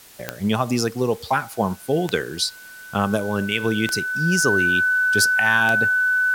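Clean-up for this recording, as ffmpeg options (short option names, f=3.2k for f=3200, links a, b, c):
-af "adeclick=t=4,bandreject=f=1.5k:w=30,afwtdn=0.005"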